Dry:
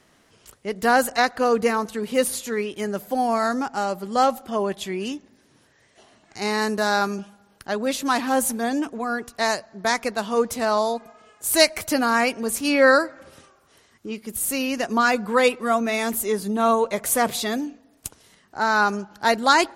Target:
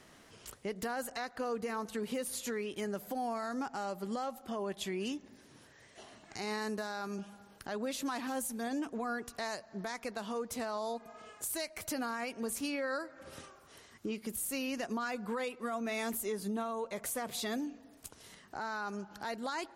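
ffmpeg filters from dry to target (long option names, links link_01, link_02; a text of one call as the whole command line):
ffmpeg -i in.wav -filter_complex "[0:a]asettb=1/sr,asplit=3[link_01][link_02][link_03];[link_01]atrim=end=8.274[link_04];[link_02]atrim=start=8.27:end=8.67,asetpts=PTS-STARTPTS,afade=type=in:duration=0.004:curve=qsin,afade=type=out:start_time=0.396:duration=0.004:curve=qsin,equalizer=frequency=760:width=0.34:gain=-4.5[link_05];[link_03]atrim=start=8.666[link_06];[link_04][link_05]acrossfade=duration=0.004:curve1=hsin:curve2=qsin[link_07];[link_07][link_06]acrossfade=duration=0.004:curve1=qsin:curve2=hsin,acompressor=threshold=-35dB:ratio=4,alimiter=level_in=4dB:limit=-24dB:level=0:latency=1:release=35,volume=-4dB" out.wav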